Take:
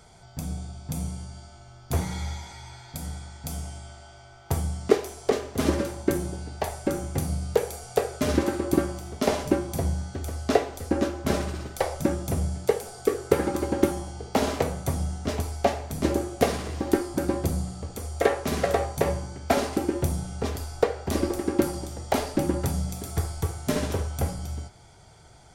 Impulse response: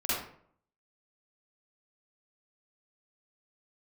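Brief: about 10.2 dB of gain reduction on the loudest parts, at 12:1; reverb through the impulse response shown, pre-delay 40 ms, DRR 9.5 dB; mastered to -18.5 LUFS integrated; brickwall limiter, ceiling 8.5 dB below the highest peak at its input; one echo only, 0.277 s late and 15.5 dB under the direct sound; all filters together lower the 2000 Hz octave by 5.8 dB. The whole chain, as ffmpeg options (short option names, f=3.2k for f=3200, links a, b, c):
-filter_complex "[0:a]equalizer=f=2k:t=o:g=-7.5,acompressor=threshold=-25dB:ratio=12,alimiter=limit=-21dB:level=0:latency=1,aecho=1:1:277:0.168,asplit=2[a][b];[1:a]atrim=start_sample=2205,adelay=40[c];[b][c]afir=irnorm=-1:irlink=0,volume=-17.5dB[d];[a][d]amix=inputs=2:normalize=0,volume=15.5dB"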